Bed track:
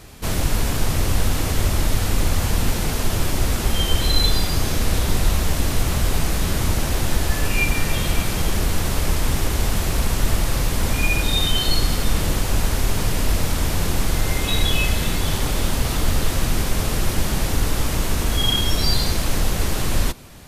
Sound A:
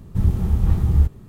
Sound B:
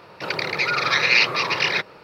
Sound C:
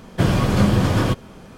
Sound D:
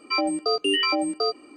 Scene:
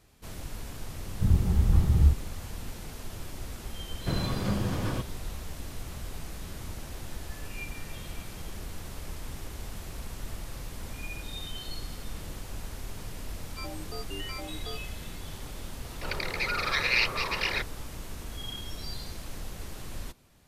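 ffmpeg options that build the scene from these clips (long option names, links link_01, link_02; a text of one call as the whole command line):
ffmpeg -i bed.wav -i cue0.wav -i cue1.wav -i cue2.wav -i cue3.wav -filter_complex "[0:a]volume=-19dB[link_01];[1:a]atrim=end=1.28,asetpts=PTS-STARTPTS,volume=-4.5dB,afade=type=in:duration=0.004:curve=hsin,afade=type=out:start_time=1.276:duration=0.004:curve=hsin,adelay=1060[link_02];[3:a]atrim=end=1.57,asetpts=PTS-STARTPTS,volume=-13dB,afade=type=in:duration=0.004:curve=hsin,afade=type=out:start_time=1.566:duration=0.004:curve=hsin,adelay=3880[link_03];[4:a]atrim=end=1.56,asetpts=PTS-STARTPTS,volume=-17.5dB,afade=type=in:duration=0.004:curve=hsin,afade=type=out:start_time=1.556:duration=0.004:curve=hsin,adelay=13460[link_04];[2:a]atrim=end=2.03,asetpts=PTS-STARTPTS,volume=-8.5dB,afade=type=in:duration=0.004:curve=hsin,afade=type=out:start_time=2.026:duration=0.004:curve=hsin,adelay=15810[link_05];[link_01][link_02][link_03][link_04][link_05]amix=inputs=5:normalize=0" out.wav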